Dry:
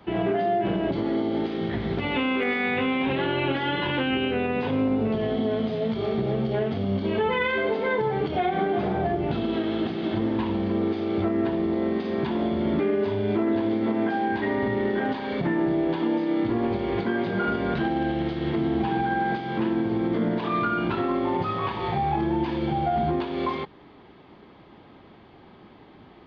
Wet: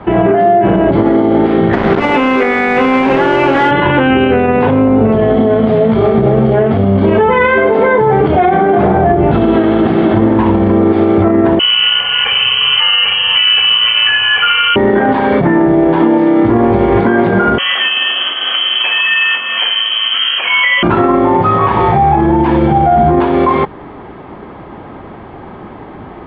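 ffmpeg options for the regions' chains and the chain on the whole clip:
-filter_complex "[0:a]asettb=1/sr,asplit=3[s0][s1][s2];[s0]atrim=end=1.734[s3];[s1]atrim=start=1.73:end=3.71,asetpts=PTS-STARTPTS,afade=t=in:d=0.004:c=qsin,afade=t=out:st=1.976:d=0.004:c=qsin,highpass=210,acrusher=bits=4:mix=0:aa=0.5[s4];[s2]atrim=start=3.706[s5];[s3][s4]acrossfade=d=0.004:c1=hsin:c2=qsin[s6];[s6][s5]acrossfade=d=0.004:c1=qsin:c2=hsin,asettb=1/sr,asplit=3[s7][s8][s9];[s7]atrim=end=11.594[s10];[s8]atrim=start=11.59:end=14.76,asetpts=PTS-STARTPTS,afade=t=in:d=0.004:c=qsin,afade=t=out:st=3.166:d=0.004:c=qsin,aecho=1:1:3.2:0.8,atrim=end_sample=139797,lowpass=f=2800:t=q:w=0.5098,lowpass=f=2800:t=q:w=0.6013,lowpass=f=2800:t=q:w=0.9,lowpass=f=2800:t=q:w=2.563,afreqshift=-3300[s11];[s9]atrim=start=14.756[s12];[s10][s11]acrossfade=d=0.004:c1=hsin:c2=qsin[s13];[s13][s12]acrossfade=d=0.004:c1=qsin:c2=hsin,asettb=1/sr,asplit=3[s14][s15][s16];[s14]atrim=end=17.584[s17];[s15]atrim=start=17.58:end=20.83,asetpts=PTS-STARTPTS,afade=t=in:d=0.004:c=qsin,afade=t=out:st=3.246:d=0.004:c=qsin,lowpass=f=2900:t=q:w=0.5098,lowpass=f=2900:t=q:w=0.6013,lowpass=f=2900:t=q:w=0.9,lowpass=f=2900:t=q:w=2.563,afreqshift=-3400,highpass=f=230:w=0.5412,highpass=f=230:w=1.3066[s18];[s16]atrim=start=20.826[s19];[s17][s18]acrossfade=d=0.004:c1=hsin:c2=qsin[s20];[s20][s19]acrossfade=d=0.004:c1=qsin:c2=hsin,lowpass=1500,equalizer=f=230:w=0.48:g=-4.5,alimiter=level_in=15.8:limit=0.891:release=50:level=0:latency=1,volume=0.891"

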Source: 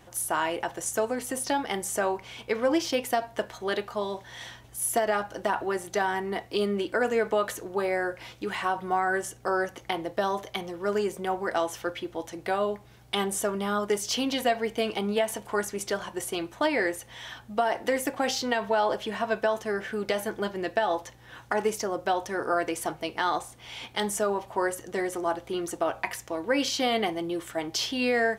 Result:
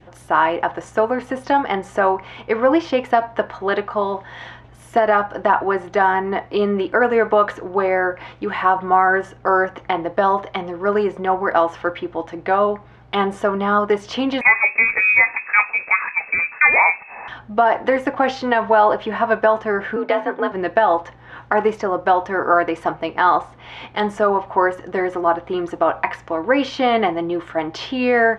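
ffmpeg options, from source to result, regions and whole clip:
-filter_complex "[0:a]asettb=1/sr,asplit=3[s0][s1][s2];[s0]atrim=end=14.414[s3];[s1]atrim=start=14.41:end=17.28,asetpts=PTS-STARTPTS,afade=t=in:d=0.004:c=qsin,afade=t=out:st=2.866:d=0.004:c=qsin,lowshelf=f=480:g=9.5,lowpass=f=2300:t=q:w=0.5098,lowpass=f=2300:t=q:w=0.6013,lowpass=f=2300:t=q:w=0.9,lowpass=f=2300:t=q:w=2.563,afreqshift=-2700[s4];[s2]atrim=start=17.276[s5];[s3][s4]acrossfade=d=0.004:c1=hsin:c2=qsin[s6];[s6][s5]acrossfade=d=0.004:c1=qsin:c2=hsin,asettb=1/sr,asplit=3[s7][s8][s9];[s7]atrim=end=19.964[s10];[s8]atrim=start=19.96:end=20.52,asetpts=PTS-STARTPTS,afade=t=in:d=0.004:c=qsin,afade=t=out:st=0.556:d=0.004:c=qsin,highpass=140,lowpass=4000,afreqshift=51[s11];[s9]atrim=start=20.516[s12];[s10][s11]acrossfade=d=0.004:c1=hsin:c2=qsin[s13];[s13][s12]acrossfade=d=0.004:c1=qsin:c2=hsin,lowpass=2300,adynamicequalizer=threshold=0.0112:dfrequency=1100:dqfactor=1.2:tfrequency=1100:tqfactor=1.2:attack=5:release=100:ratio=0.375:range=3:mode=boostabove:tftype=bell,volume=2.51"

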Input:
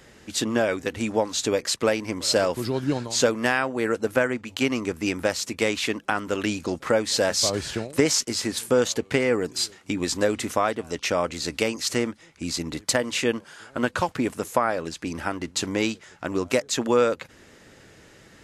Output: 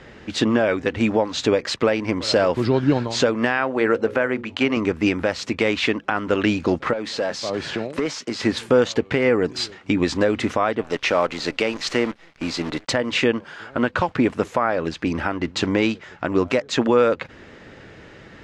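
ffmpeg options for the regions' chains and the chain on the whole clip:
-filter_complex "[0:a]asettb=1/sr,asplit=3[s0][s1][s2];[s0]atrim=end=3.574[s3];[s1]atrim=start=3.57:end=4.77,asetpts=PTS-STARTPTS,afade=t=in:d=0.004:c=qsin,afade=t=out:st=1.196:d=0.004:c=qsin,bass=f=250:g=-4,treble=f=4000:g=-3,bandreject=f=60:t=h:w=6,bandreject=f=120:t=h:w=6,bandreject=f=180:t=h:w=6,bandreject=f=240:t=h:w=6,bandreject=f=300:t=h:w=6,bandreject=f=360:t=h:w=6,bandreject=f=420:t=h:w=6,bandreject=f=480:t=h:w=6,bandreject=f=540:t=h:w=6,acrusher=bits=9:mode=log:mix=0:aa=0.000001[s4];[s2]atrim=start=4.766[s5];[s3][s4]acrossfade=d=0.004:c1=hsin:c2=qsin[s6];[s6][s5]acrossfade=d=0.004:c1=qsin:c2=hsin,asettb=1/sr,asplit=3[s7][s8][s9];[s7]atrim=end=6.934[s10];[s8]atrim=start=6.93:end=8.4,asetpts=PTS-STARTPTS,afade=t=in:d=0.004:c=qsin,afade=t=out:st=1.466:d=0.004:c=qsin,highpass=150,acompressor=threshold=0.0355:ratio=2.5:attack=3.2:release=140:knee=1:detection=peak,asoftclip=type=hard:threshold=0.0596[s11];[s9]atrim=start=8.396[s12];[s10][s11]acrossfade=d=0.004:c1=hsin:c2=qsin[s13];[s13][s12]acrossfade=d=0.004:c1=qsin:c2=hsin,asettb=1/sr,asplit=3[s14][s15][s16];[s14]atrim=end=10.834[s17];[s15]atrim=start=10.83:end=12.9,asetpts=PTS-STARTPTS,afade=t=in:d=0.004:c=qsin,afade=t=out:st=2.066:d=0.004:c=qsin,highpass=f=280:p=1,acrusher=bits=7:dc=4:mix=0:aa=0.000001[s18];[s16]atrim=start=12.896[s19];[s17][s18]acrossfade=d=0.004:c1=hsin:c2=qsin[s20];[s20][s19]acrossfade=d=0.004:c1=qsin:c2=hsin,lowpass=3200,alimiter=limit=0.178:level=0:latency=1:release=190,volume=2.51"

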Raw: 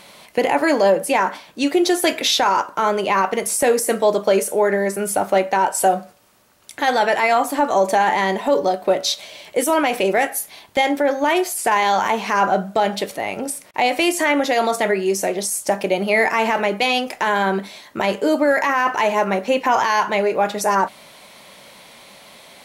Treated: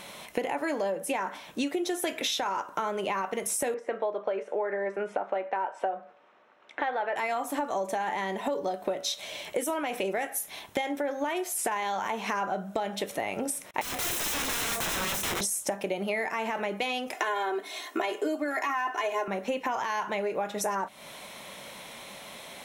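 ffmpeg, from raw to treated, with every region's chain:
-filter_complex "[0:a]asettb=1/sr,asplit=3[s0][s1][s2];[s0]atrim=end=3.744[s3];[s1]atrim=start=3.74:end=7.16,asetpts=PTS-STARTPTS,afade=t=in:d=0.004:c=qsin,afade=t=out:st=3.416:d=0.004:c=qsin,highpass=400,lowpass=2500,aemphasis=mode=reproduction:type=50fm[s4];[s2]atrim=start=7.156[s5];[s3][s4]acrossfade=d=0.004:c1=hsin:c2=qsin[s6];[s6][s5]acrossfade=d=0.004:c1=qsin:c2=hsin,asettb=1/sr,asplit=3[s7][s8][s9];[s7]atrim=end=13.814[s10];[s8]atrim=start=13.81:end=15.41,asetpts=PTS-STARTPTS,afade=t=in:d=0.004:c=qsin,afade=t=out:st=1.596:d=0.004:c=qsin,equalizer=f=5900:t=o:w=2.3:g=-5,aeval=exprs='(mod(14.1*val(0)+1,2)-1)/14.1':c=same,asplit=2[s11][s12];[s12]adelay=30,volume=0.335[s13];[s11][s13]amix=inputs=2:normalize=0,atrim=end_sample=70560[s14];[s9]atrim=start=15.406[s15];[s10][s14]acrossfade=d=0.004:c1=hsin:c2=qsin[s16];[s16][s15]acrossfade=d=0.004:c1=qsin:c2=hsin,asettb=1/sr,asplit=3[s17][s18][s19];[s17]atrim=end=17.144[s20];[s18]atrim=start=17.14:end=19.28,asetpts=PTS-STARTPTS,afade=t=in:d=0.004:c=qsin,afade=t=out:st=2.136:d=0.004:c=qsin,highpass=f=280:w=0.5412,highpass=f=280:w=1.3066,aecho=1:1:2.8:0.98,atrim=end_sample=94374[s21];[s19]atrim=start=19.276[s22];[s20][s21]acrossfade=d=0.004:c1=hsin:c2=qsin[s23];[s23][s22]acrossfade=d=0.004:c1=qsin:c2=hsin,bandreject=f=4600:w=6.4,acompressor=threshold=0.0447:ratio=10"

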